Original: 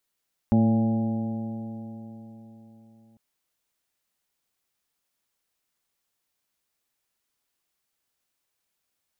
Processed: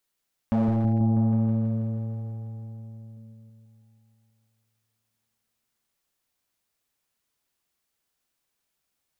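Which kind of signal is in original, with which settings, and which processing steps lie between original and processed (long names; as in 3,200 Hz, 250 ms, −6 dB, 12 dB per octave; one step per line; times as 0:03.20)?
stiff-string partials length 2.65 s, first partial 111 Hz, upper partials 5.5/−9.5/−15.5/−9/−16.5/−11 dB, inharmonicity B 0.002, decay 4.04 s, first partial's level −22 dB
hard clipping −19 dBFS
on a send: echo whose low-pass opens from repeat to repeat 162 ms, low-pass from 200 Hz, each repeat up 1 octave, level −3 dB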